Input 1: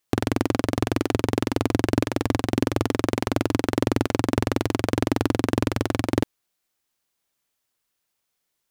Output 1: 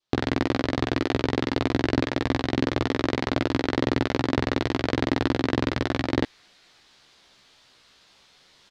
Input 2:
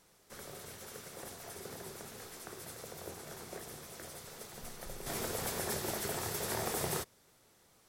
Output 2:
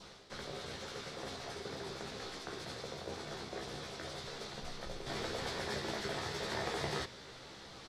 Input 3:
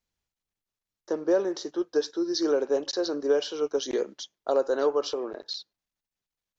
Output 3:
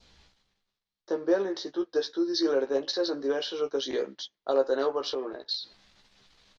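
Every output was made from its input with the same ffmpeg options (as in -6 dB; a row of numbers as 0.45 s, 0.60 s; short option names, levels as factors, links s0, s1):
-filter_complex "[0:a]adynamicequalizer=threshold=0.00355:dfrequency=1900:dqfactor=3:tfrequency=1900:tqfactor=3:attack=5:release=100:ratio=0.375:range=2.5:mode=boostabove:tftype=bell,lowpass=f=4000:t=q:w=1.9,asplit=2[s0][s1];[s1]adelay=15,volume=0.562[s2];[s0][s2]amix=inputs=2:normalize=0,areverse,acompressor=mode=upward:threshold=0.0224:ratio=2.5,areverse,equalizer=f=2700:w=1.5:g=-3,volume=0.75"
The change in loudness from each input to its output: -1.0 LU, -1.5 LU, -1.5 LU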